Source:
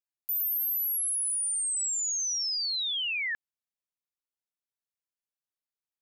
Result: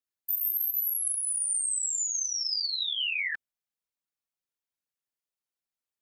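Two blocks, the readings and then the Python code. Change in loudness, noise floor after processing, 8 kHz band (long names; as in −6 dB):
0.0 dB, below −85 dBFS, 0.0 dB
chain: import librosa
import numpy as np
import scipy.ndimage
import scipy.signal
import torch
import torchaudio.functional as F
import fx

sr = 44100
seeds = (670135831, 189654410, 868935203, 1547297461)

y = fx.whisperise(x, sr, seeds[0])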